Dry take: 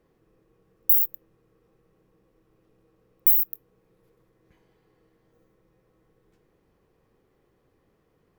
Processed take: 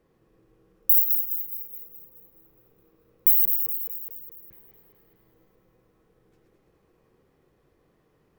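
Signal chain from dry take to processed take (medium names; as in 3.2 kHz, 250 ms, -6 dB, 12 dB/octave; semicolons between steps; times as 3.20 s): backward echo that repeats 105 ms, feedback 72%, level -5 dB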